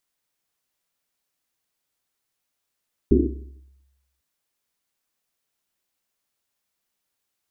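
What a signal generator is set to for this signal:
drum after Risset, pitch 67 Hz, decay 1.10 s, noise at 310 Hz, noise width 170 Hz, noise 60%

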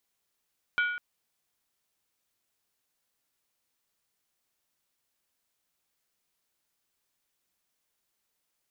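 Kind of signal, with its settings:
struck skin length 0.20 s, lowest mode 1,450 Hz, decay 0.91 s, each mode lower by 7 dB, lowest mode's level −22 dB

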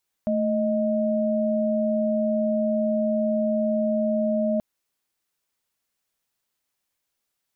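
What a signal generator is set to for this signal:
held notes A3/D#5 sine, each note −23 dBFS 4.33 s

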